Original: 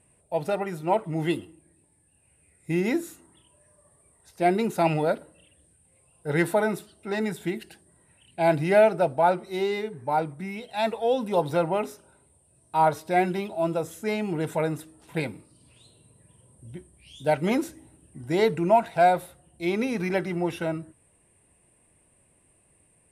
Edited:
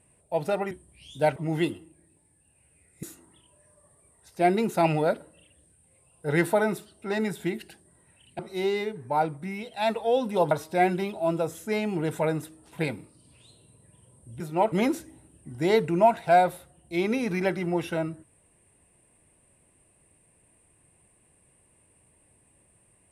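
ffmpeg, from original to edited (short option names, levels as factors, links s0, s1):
-filter_complex "[0:a]asplit=8[s0][s1][s2][s3][s4][s5][s6][s7];[s0]atrim=end=0.712[s8];[s1]atrim=start=16.758:end=17.412[s9];[s2]atrim=start=1.028:end=2.702[s10];[s3]atrim=start=3.038:end=8.402[s11];[s4]atrim=start=9.358:end=11.482[s12];[s5]atrim=start=12.868:end=16.762[s13];[s6]atrim=start=0.708:end=1.032[s14];[s7]atrim=start=17.408[s15];[s8][s9]acrossfade=d=0.004:c1=hsin:c2=hsin[s16];[s16][s10]acrossfade=d=0.004:c1=hsin:c2=hsin[s17];[s17][s11]acrossfade=d=0.004:c1=hsin:c2=hsin[s18];[s18][s12]acrossfade=d=0.004:c1=hsin:c2=hsin[s19];[s19][s13]acrossfade=d=0.004:c1=hsin:c2=hsin[s20];[s20][s14]acrossfade=d=0.004:c1=hsin:c2=hsin[s21];[s21][s15]acrossfade=d=0.004:c1=hsin:c2=hsin"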